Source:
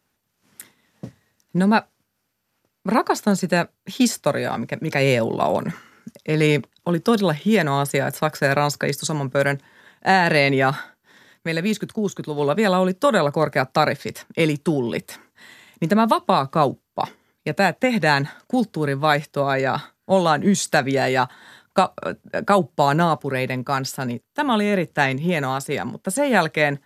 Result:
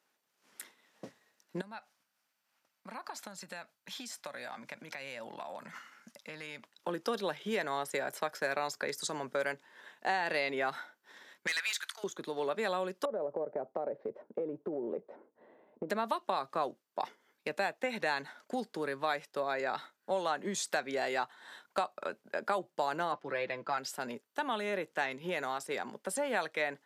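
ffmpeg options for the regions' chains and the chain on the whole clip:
-filter_complex "[0:a]asettb=1/sr,asplit=3[a][b][c];[a]atrim=end=1.614[d];[b]atrim=start=1.61:end=6.73,asetpts=PTS-STARTPTS,afade=t=in:d=0.004:c=qsin,afade=t=out:st=5.116:d=0.004:c=qsin,equalizer=f=400:t=o:w=0.71:g=-14.5,acompressor=threshold=-33dB:ratio=10:attack=3.2:release=140:knee=1:detection=peak[e];[c]atrim=start=6.726[f];[d][e]acrossfade=d=0.004:c1=hsin:c2=qsin[g];[g][f]acrossfade=d=0.004:c1=qsin:c2=hsin,asettb=1/sr,asplit=3[h][i][j];[h]atrim=end=11.474[k];[i]atrim=start=11.47:end=12.04,asetpts=PTS-STARTPTS,afade=t=in:d=0.004:c=qsin,afade=t=out:st=0.566:d=0.004:c=qsin,highpass=f=1.2k:w=0.5412,highpass=f=1.2k:w=1.3066,aeval=exprs='0.188*sin(PI/2*2.24*val(0)/0.188)':c=same[l];[j]atrim=start=12.036[m];[k][l]acrossfade=d=0.004:c1=hsin:c2=qsin[n];[n][m]acrossfade=d=0.004:c1=qsin:c2=hsin,asettb=1/sr,asplit=3[o][p][q];[o]atrim=end=13.054[r];[p]atrim=start=13.05:end=15.9,asetpts=PTS-STARTPTS,afade=t=in:d=0.004:c=qsin,afade=t=out:st=2.846:d=0.004:c=qsin,lowpass=f=540:t=q:w=2,acompressor=threshold=-19dB:ratio=6:attack=3.2:release=140:knee=1:detection=peak[s];[q]atrim=start=15.896[t];[r][s]acrossfade=d=0.004:c1=hsin:c2=qsin[u];[u][t]acrossfade=d=0.004:c1=qsin:c2=hsin,asettb=1/sr,asplit=3[v][w][x];[v]atrim=end=23.124[y];[w]atrim=start=23.12:end=23.78,asetpts=PTS-STARTPTS,afade=t=in:d=0.004:c=qsin,afade=t=out:st=0.656:d=0.004:c=qsin,lowpass=4k,aecho=1:1:6:0.62,atrim=end_sample=29106[z];[x]atrim=start=23.776[aa];[y][z]acrossfade=d=0.004:c1=hsin:c2=qsin[ab];[ab][aa]acrossfade=d=0.004:c1=qsin:c2=hsin,highpass=390,highshelf=f=11k:g=-8,acompressor=threshold=-34dB:ratio=2,volume=-3.5dB"

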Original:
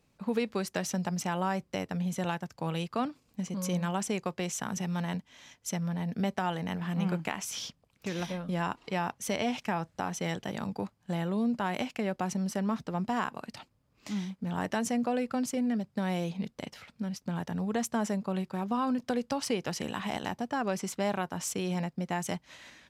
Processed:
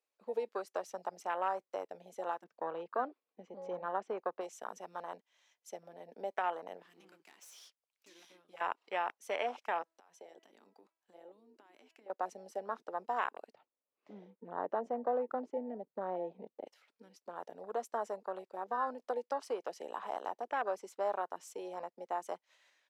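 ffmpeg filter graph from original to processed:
-filter_complex "[0:a]asettb=1/sr,asplit=3[a][b][c];[a]atrim=end=2.444[d];[b]atrim=start=2.44:end=4.41,asetpts=PTS-STARTPTS,afade=t=in:d=0.004:c=qsin,afade=t=out:st=1.966:d=0.004:c=qsin,lowpass=2.8k,lowshelf=f=240:g=9[e];[c]atrim=start=4.406[f];[d][e]acrossfade=d=0.004:c1=hsin:c2=qsin[g];[g][f]acrossfade=d=0.004:c1=qsin:c2=hsin,asettb=1/sr,asplit=3[h][i][j];[h]atrim=end=6.824[k];[i]atrim=start=6.82:end=8.61,asetpts=PTS-STARTPTS,afade=t=in:d=0.004:c=qsin,afade=t=out:st=1.786:d=0.004:c=qsin,tiltshelf=f=1.4k:g=-5.5,aeval=exprs='(tanh(44.7*val(0)+0.7)-tanh(0.7))/44.7':c=same[l];[j]atrim=start=8.606[m];[k][l]acrossfade=d=0.004:c1=hsin:c2=qsin[n];[n][m]acrossfade=d=0.004:c1=qsin:c2=hsin,asettb=1/sr,asplit=3[o][p][q];[o]atrim=end=9.824[r];[p]atrim=start=9.82:end=12.1,asetpts=PTS-STARTPTS,afade=t=in:d=0.004:c=qsin,afade=t=out:st=2.276:d=0.004:c=qsin,highpass=f=180:w=0.5412,highpass=f=180:w=1.3066,bandreject=f=326.8:t=h:w=4,bandreject=f=653.6:t=h:w=4,bandreject=f=980.4:t=h:w=4,bandreject=f=1.3072k:t=h:w=4,bandreject=f=1.634k:t=h:w=4,bandreject=f=1.9608k:t=h:w=4,bandreject=f=2.2876k:t=h:w=4,bandreject=f=2.6144k:t=h:w=4,bandreject=f=2.9412k:t=h:w=4,acompressor=threshold=-39dB:ratio=16:attack=3.2:release=140:knee=1:detection=peak[s];[q]atrim=start=12.096[t];[r][s]acrossfade=d=0.004:c1=hsin:c2=qsin[u];[u][t]acrossfade=d=0.004:c1=qsin:c2=hsin,asettb=1/sr,asplit=3[v][w][x];[v]atrim=end=13.524[y];[w]atrim=start=13.52:end=16.66,asetpts=PTS-STARTPTS,afade=t=in:d=0.004:c=qsin,afade=t=out:st=3.136:d=0.004:c=qsin,lowpass=f=2.1k:p=1,aemphasis=mode=reproduction:type=riaa[z];[x]atrim=start=16.656[aa];[y][z]acrossfade=d=0.004:c1=hsin:c2=qsin[ab];[ab][aa]acrossfade=d=0.004:c1=qsin:c2=hsin,afwtdn=0.0158,highpass=f=440:w=0.5412,highpass=f=440:w=1.3066,volume=-1.5dB"

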